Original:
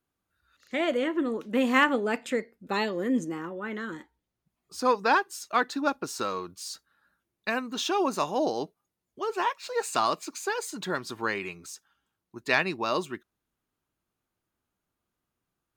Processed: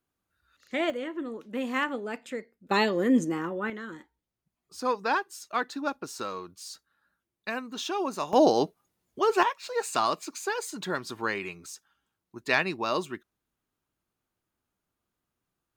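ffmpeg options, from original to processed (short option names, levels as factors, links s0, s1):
-af "asetnsamples=n=441:p=0,asendcmd='0.9 volume volume -7dB;2.71 volume volume 4dB;3.7 volume volume -4dB;8.33 volume volume 7dB;9.43 volume volume -0.5dB',volume=0.944"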